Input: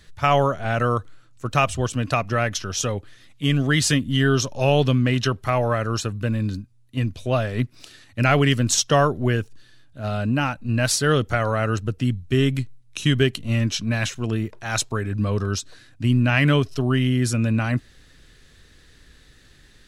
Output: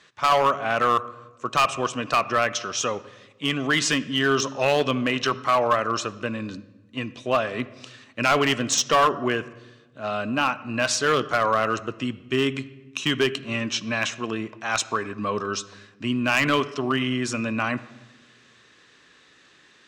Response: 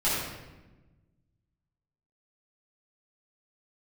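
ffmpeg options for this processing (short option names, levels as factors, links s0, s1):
-filter_complex "[0:a]highpass=280,equalizer=f=1100:t=q:w=4:g=9,equalizer=f=2600:t=q:w=4:g=4,equalizer=f=4500:t=q:w=4:g=-4,lowpass=f=7400:w=0.5412,lowpass=f=7400:w=1.3066,asplit=2[s0][s1];[1:a]atrim=start_sample=2205,lowpass=6800[s2];[s1][s2]afir=irnorm=-1:irlink=0,volume=0.0447[s3];[s0][s3]amix=inputs=2:normalize=0,asoftclip=type=hard:threshold=0.211"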